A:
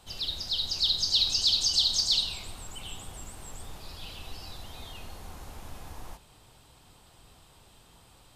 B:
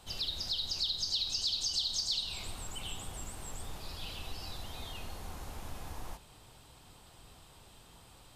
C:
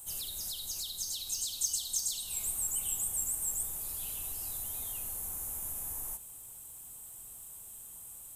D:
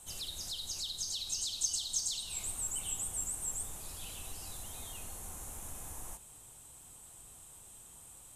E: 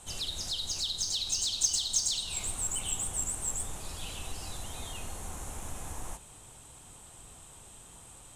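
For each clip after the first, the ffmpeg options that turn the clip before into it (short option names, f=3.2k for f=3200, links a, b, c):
-af "acompressor=threshold=-33dB:ratio=3"
-af "aexciter=amount=10.2:drive=9.4:freq=7.2k,volume=-7dB"
-af "lowpass=6.7k,volume=2dB"
-af "adynamicsmooth=sensitivity=5:basefreq=7.7k,volume=7.5dB"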